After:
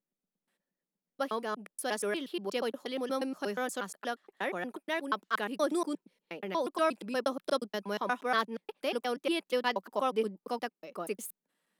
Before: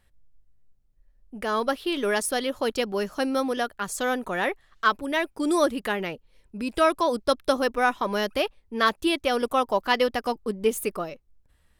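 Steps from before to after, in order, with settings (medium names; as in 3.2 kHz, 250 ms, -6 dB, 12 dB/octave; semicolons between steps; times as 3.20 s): slices played last to first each 119 ms, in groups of 5; elliptic high-pass 180 Hz, stop band 40 dB; trim -7.5 dB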